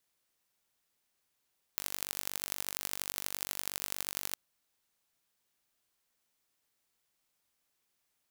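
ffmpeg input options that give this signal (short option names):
-f lavfi -i "aevalsrc='0.501*eq(mod(n,909),0)*(0.5+0.5*eq(mod(n,3636),0))':d=2.56:s=44100"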